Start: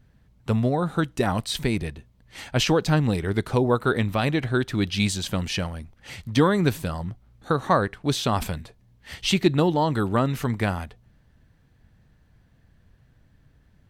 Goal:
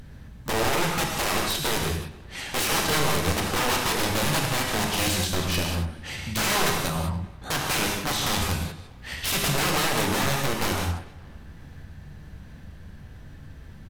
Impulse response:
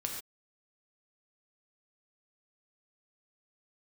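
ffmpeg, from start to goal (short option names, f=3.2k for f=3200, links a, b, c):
-filter_complex "[0:a]asplit=2[a][b];[b]acompressor=mode=upward:threshold=-23dB:ratio=2.5,volume=-0.5dB[c];[a][c]amix=inputs=2:normalize=0,aeval=exprs='(mod(5.01*val(0)+1,2)-1)/5.01':c=same,asplit=2[d][e];[e]adelay=286,lowpass=f=3.3k:p=1,volume=-21.5dB,asplit=2[f][g];[g]adelay=286,lowpass=f=3.3k:p=1,volume=0.51,asplit=2[h][i];[i]adelay=286,lowpass=f=3.3k:p=1,volume=0.51,asplit=2[j][k];[k]adelay=286,lowpass=f=3.3k:p=1,volume=0.51[l];[d][f][h][j][l]amix=inputs=5:normalize=0[m];[1:a]atrim=start_sample=2205,afade=t=out:st=0.19:d=0.01,atrim=end_sample=8820,asetrate=30870,aresample=44100[n];[m][n]afir=irnorm=-1:irlink=0,volume=-8dB"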